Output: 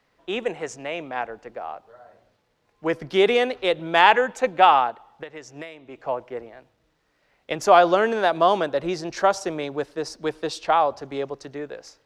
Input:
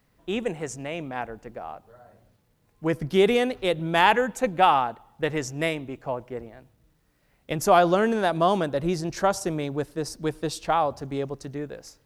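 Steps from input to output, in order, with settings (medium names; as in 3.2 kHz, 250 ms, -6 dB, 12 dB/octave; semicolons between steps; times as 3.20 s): three-band isolator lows -13 dB, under 340 Hz, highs -17 dB, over 6.4 kHz; 4.90–5.99 s: compression 16:1, threshold -38 dBFS, peak gain reduction 18 dB; trim +4 dB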